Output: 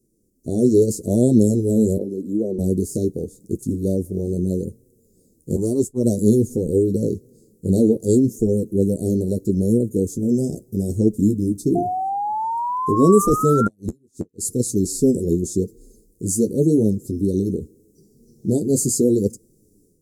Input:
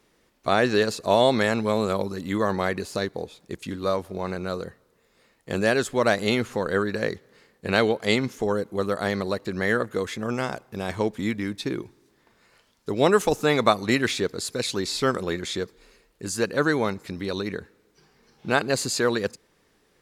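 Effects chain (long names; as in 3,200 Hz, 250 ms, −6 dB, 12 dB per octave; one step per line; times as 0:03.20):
inverse Chebyshev band-stop filter 1,100–2,700 Hz, stop band 70 dB
0:01.97–0:02.59: three-way crossover with the lows and the highs turned down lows −21 dB, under 250 Hz, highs −15 dB, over 2,700 Hz
0:05.56–0:06.04: downward expander −22 dBFS
automatic gain control gain up to 10 dB
0:13.62–0:14.42: gate with flip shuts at −11 dBFS, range −40 dB
flanger 0.82 Hz, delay 7.8 ms, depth 5.6 ms, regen −25%
0:11.75–0:13.68: sound drawn into the spectrogram rise 690–1,400 Hz −28 dBFS
level +4.5 dB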